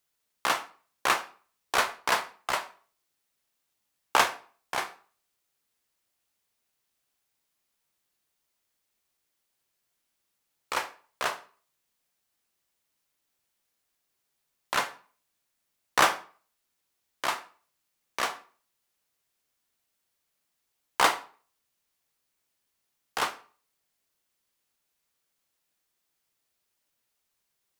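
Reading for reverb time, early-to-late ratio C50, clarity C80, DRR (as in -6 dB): 0.45 s, 15.5 dB, 20.0 dB, 9.0 dB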